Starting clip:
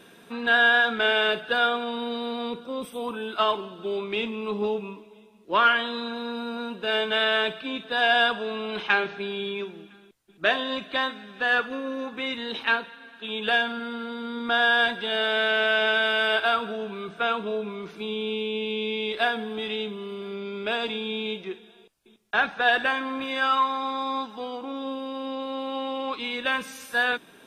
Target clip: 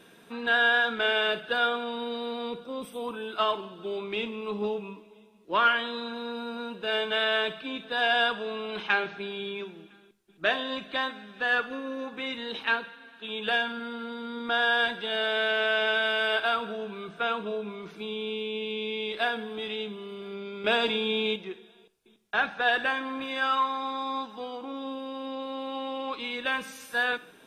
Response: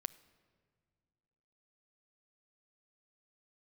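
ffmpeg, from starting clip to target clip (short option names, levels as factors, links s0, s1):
-filter_complex "[0:a]asettb=1/sr,asplit=3[s0][s1][s2];[s0]atrim=end=20.644[s3];[s1]atrim=start=20.64:end=21.36,asetpts=PTS-STARTPTS,afade=t=in:d=0.004:c=qsin,afade=t=out:st=0.716:d=0.004:c=qsin,acontrast=56[s4];[s2]atrim=start=21.356[s5];[s3][s4]acrossfade=d=0.004:c1=hsin:c2=qsin[s6];[s6][s5]acrossfade=d=0.004:c1=qsin:c2=hsin[s7];[1:a]atrim=start_sample=2205,afade=t=out:st=0.24:d=0.01,atrim=end_sample=11025,asetrate=48510,aresample=44100[s8];[s7][s8]afir=irnorm=-1:irlink=0"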